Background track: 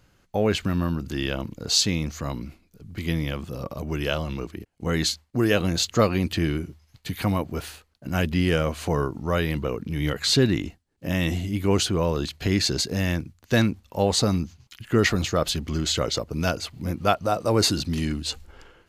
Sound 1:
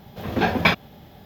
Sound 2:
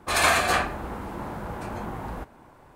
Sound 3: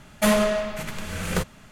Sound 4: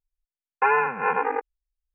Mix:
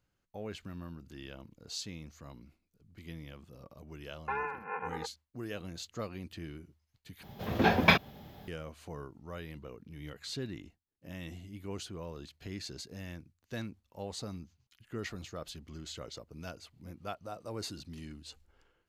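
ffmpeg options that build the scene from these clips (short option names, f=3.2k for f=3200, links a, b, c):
-filter_complex "[0:a]volume=-19.5dB,asplit=2[a][b];[a]atrim=end=7.234[c];[1:a]atrim=end=1.25,asetpts=PTS-STARTPTS,volume=-4.5dB[d];[b]atrim=start=8.476[e];[4:a]atrim=end=1.94,asetpts=PTS-STARTPTS,volume=-15dB,afade=t=in:d=0.004:c=hsin,afade=t=out:st=1.936:d=0.004:c=hsin,adelay=3660[f];[c][d]acrossfade=d=0.004:c1=hsin:c2=hsin[g];[g][e]acrossfade=d=0.004:c1=hsin:c2=hsin[h];[h][f]amix=inputs=2:normalize=0"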